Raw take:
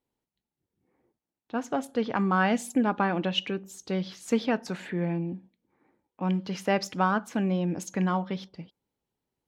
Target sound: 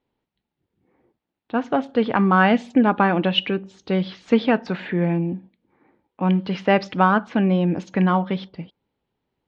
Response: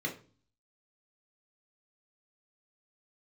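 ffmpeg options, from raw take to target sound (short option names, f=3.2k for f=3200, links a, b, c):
-af "lowpass=f=3.9k:w=0.5412,lowpass=f=3.9k:w=1.3066,volume=8dB"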